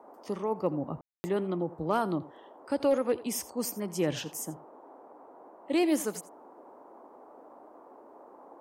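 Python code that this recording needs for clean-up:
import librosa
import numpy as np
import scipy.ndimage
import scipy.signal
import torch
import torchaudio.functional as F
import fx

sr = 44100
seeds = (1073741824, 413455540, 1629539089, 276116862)

y = fx.fix_declip(x, sr, threshold_db=-17.5)
y = fx.fix_ambience(y, sr, seeds[0], print_start_s=7.69, print_end_s=8.19, start_s=1.01, end_s=1.24)
y = fx.noise_reduce(y, sr, print_start_s=7.69, print_end_s=8.19, reduce_db=23.0)
y = fx.fix_echo_inverse(y, sr, delay_ms=83, level_db=-17.5)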